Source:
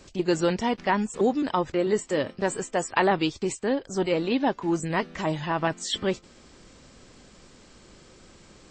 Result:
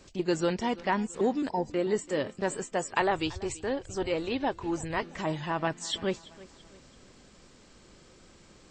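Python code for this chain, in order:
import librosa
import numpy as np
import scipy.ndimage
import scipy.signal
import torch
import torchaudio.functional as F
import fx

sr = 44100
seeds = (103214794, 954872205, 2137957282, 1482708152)

y = fx.spec_erase(x, sr, start_s=1.49, length_s=0.22, low_hz=1000.0, high_hz=4000.0)
y = fx.low_shelf_res(y, sr, hz=130.0, db=11.5, q=3.0, at=(3.01, 5.03))
y = fx.echo_feedback(y, sr, ms=334, feedback_pct=42, wet_db=-20.0)
y = y * 10.0 ** (-4.0 / 20.0)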